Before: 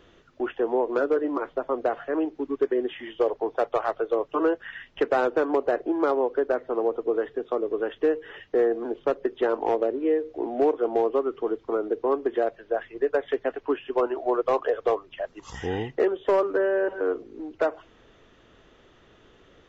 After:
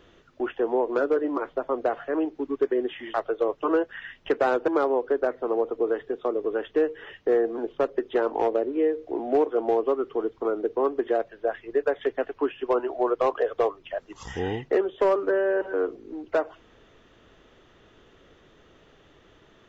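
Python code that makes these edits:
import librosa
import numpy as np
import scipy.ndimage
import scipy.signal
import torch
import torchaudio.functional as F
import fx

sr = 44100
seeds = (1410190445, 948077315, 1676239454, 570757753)

y = fx.edit(x, sr, fx.cut(start_s=3.14, length_s=0.71),
    fx.cut(start_s=5.39, length_s=0.56), tone=tone)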